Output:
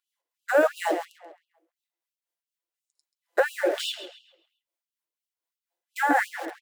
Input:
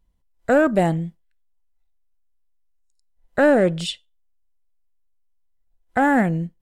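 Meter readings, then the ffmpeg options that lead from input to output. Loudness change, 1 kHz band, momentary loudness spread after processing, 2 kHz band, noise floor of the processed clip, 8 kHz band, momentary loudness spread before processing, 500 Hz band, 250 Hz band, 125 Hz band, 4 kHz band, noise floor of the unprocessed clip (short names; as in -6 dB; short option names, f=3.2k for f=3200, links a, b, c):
-6.0 dB, -3.5 dB, 19 LU, -2.0 dB, under -85 dBFS, -1.0 dB, 15 LU, -5.5 dB, -13.5 dB, under -40 dB, -1.0 dB, -65 dBFS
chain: -filter_complex "[0:a]bandreject=f=56.07:t=h:w=4,bandreject=f=112.14:t=h:w=4,bandreject=f=168.21:t=h:w=4,bandreject=f=224.28:t=h:w=4,bandreject=f=280.35:t=h:w=4,bandreject=f=336.42:t=h:w=4,bandreject=f=392.49:t=h:w=4,bandreject=f=448.56:t=h:w=4,bandreject=f=504.63:t=h:w=4,bandreject=f=560.7:t=h:w=4,bandreject=f=616.77:t=h:w=4,bandreject=f=672.84:t=h:w=4,bandreject=f=728.91:t=h:w=4,acrossover=split=380|3600[a][b][c];[c]alimiter=level_in=8dB:limit=-24dB:level=0:latency=1:release=132,volume=-8dB[d];[a][b][d]amix=inputs=3:normalize=0,bandreject=f=1.3k:w=21,asplit=2[e][f];[f]acrusher=bits=4:mix=0:aa=0.000001,volume=-9dB[g];[e][g]amix=inputs=2:normalize=0,flanger=delay=5.5:depth=1.3:regen=-47:speed=0.86:shape=triangular,acompressor=threshold=-20dB:ratio=4,acrossover=split=510[h][i];[h]aeval=exprs='val(0)*(1-0.5/2+0.5/2*cos(2*PI*4.1*n/s))':c=same[j];[i]aeval=exprs='val(0)*(1-0.5/2-0.5/2*cos(2*PI*4.1*n/s))':c=same[k];[j][k]amix=inputs=2:normalize=0,asplit=2[l][m];[m]adelay=134,lowpass=f=4.4k:p=1,volume=-9.5dB,asplit=2[n][o];[o]adelay=134,lowpass=f=4.4k:p=1,volume=0.42,asplit=2[p][q];[q]adelay=134,lowpass=f=4.4k:p=1,volume=0.42,asplit=2[r][s];[s]adelay=134,lowpass=f=4.4k:p=1,volume=0.42,asplit=2[t][u];[u]adelay=134,lowpass=f=4.4k:p=1,volume=0.42[v];[l][n][p][r][t][v]amix=inputs=6:normalize=0,afftfilt=real='re*gte(b*sr/1024,290*pow(2700/290,0.5+0.5*sin(2*PI*2.9*pts/sr)))':imag='im*gte(b*sr/1024,290*pow(2700/290,0.5+0.5*sin(2*PI*2.9*pts/sr)))':win_size=1024:overlap=0.75,volume=7.5dB"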